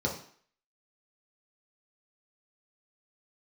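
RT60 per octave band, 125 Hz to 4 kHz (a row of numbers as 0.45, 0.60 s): 0.40, 0.50, 0.50, 0.55, 0.55, 0.50 s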